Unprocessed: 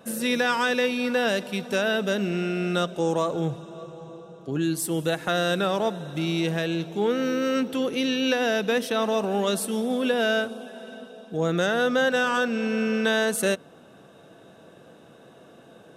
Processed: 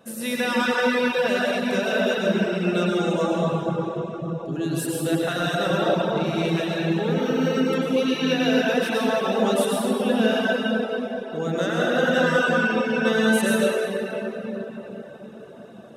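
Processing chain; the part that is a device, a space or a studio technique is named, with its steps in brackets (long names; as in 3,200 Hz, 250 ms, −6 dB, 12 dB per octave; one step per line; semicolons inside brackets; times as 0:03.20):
0:05.79–0:06.24: low-pass filter 6,900 Hz
cathedral (convolution reverb RT60 4.8 s, pre-delay 84 ms, DRR −6.5 dB)
reverb reduction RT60 0.6 s
level −3.5 dB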